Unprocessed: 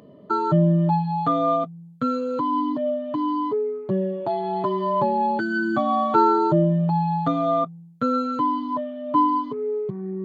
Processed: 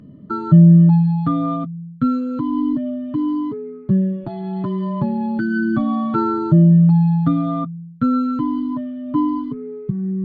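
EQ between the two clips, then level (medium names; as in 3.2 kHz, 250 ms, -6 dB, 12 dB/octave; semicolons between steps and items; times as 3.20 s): tilt EQ -3.5 dB/octave; high-order bell 620 Hz -12.5 dB; +1.5 dB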